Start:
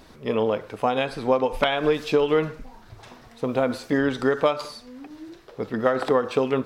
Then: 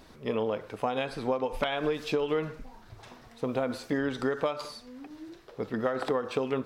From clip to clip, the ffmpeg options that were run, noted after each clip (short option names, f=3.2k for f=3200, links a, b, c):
-af "acompressor=threshold=-22dB:ratio=2.5,volume=-4dB"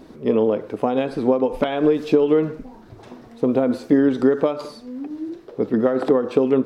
-af "equalizer=f=300:t=o:w=2.3:g=15"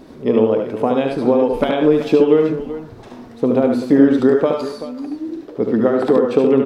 -af "aecho=1:1:73|98|383:0.596|0.282|0.224,volume=2.5dB"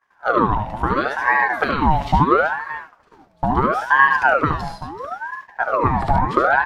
-af "agate=range=-33dB:threshold=-27dB:ratio=3:detection=peak,aeval=exprs='val(0)*sin(2*PI*890*n/s+890*0.55/0.74*sin(2*PI*0.74*n/s))':c=same"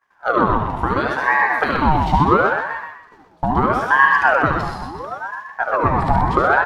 -filter_complex "[0:a]asplit=5[a][b][c][d][e];[b]adelay=125,afreqshift=35,volume=-5.5dB[f];[c]adelay=250,afreqshift=70,volume=-15.1dB[g];[d]adelay=375,afreqshift=105,volume=-24.8dB[h];[e]adelay=500,afreqshift=140,volume=-34.4dB[i];[a][f][g][h][i]amix=inputs=5:normalize=0"